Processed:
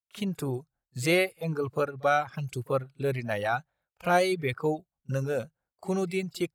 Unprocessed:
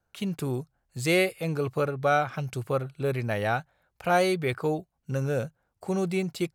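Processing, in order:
downward expander −56 dBFS
echo ahead of the sound 39 ms −18 dB
reverb reduction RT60 1.7 s

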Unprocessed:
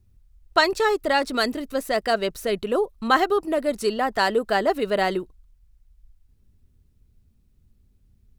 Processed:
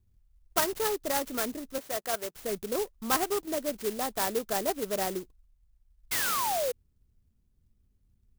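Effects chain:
0:01.78–0:02.36: meter weighting curve A
0:06.11–0:06.72: sound drawn into the spectrogram fall 470–2,200 Hz −20 dBFS
converter with an unsteady clock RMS 0.11 ms
level −8.5 dB

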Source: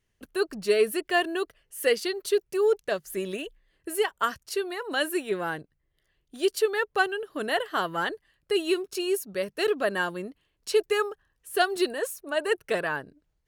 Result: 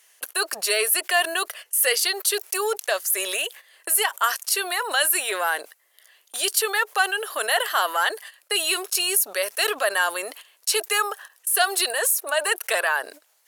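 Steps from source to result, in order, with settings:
noise gate −50 dBFS, range −23 dB
high-pass filter 620 Hz 24 dB per octave
parametric band 12,000 Hz +13 dB 1.5 octaves
envelope flattener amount 50%
level +2 dB

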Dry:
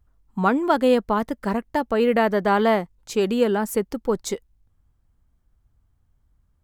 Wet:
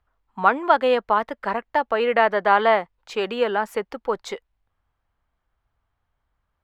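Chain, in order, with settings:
three-way crossover with the lows and the highs turned down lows −17 dB, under 530 Hz, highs −20 dB, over 3,800 Hz
level +5 dB

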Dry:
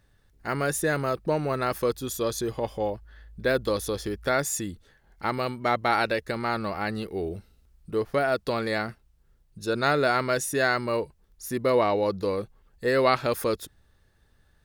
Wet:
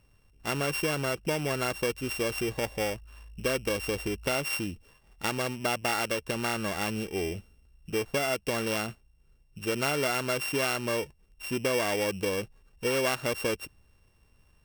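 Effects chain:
samples sorted by size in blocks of 16 samples
downward compressor 3 to 1, threshold −26 dBFS, peak gain reduction 8 dB

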